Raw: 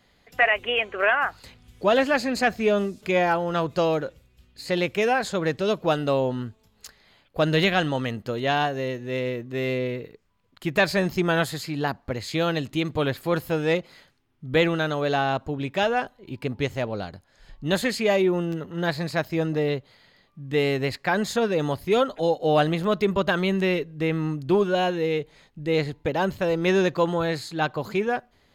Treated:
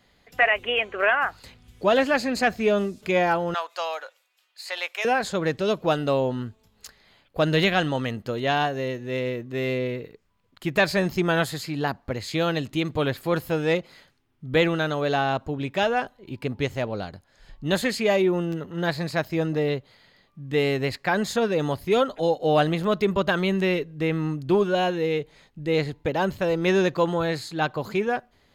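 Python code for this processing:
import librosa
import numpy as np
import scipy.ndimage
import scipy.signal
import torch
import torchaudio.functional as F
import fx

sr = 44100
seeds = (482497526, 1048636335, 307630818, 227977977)

y = fx.highpass(x, sr, hz=730.0, slope=24, at=(3.54, 5.05))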